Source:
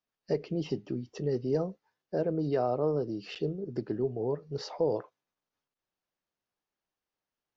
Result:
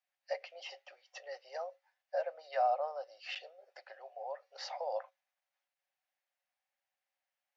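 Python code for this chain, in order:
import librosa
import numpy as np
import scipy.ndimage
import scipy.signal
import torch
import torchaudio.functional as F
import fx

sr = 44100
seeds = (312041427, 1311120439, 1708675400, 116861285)

y = scipy.signal.sosfilt(scipy.signal.cheby1(6, 9, 530.0, 'highpass', fs=sr, output='sos'), x)
y = F.gain(torch.from_numpy(y), 5.0).numpy()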